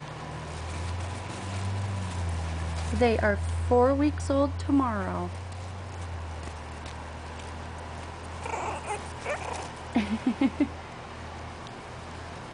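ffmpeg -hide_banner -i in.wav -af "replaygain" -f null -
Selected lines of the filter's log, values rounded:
track_gain = +7.9 dB
track_peak = 0.206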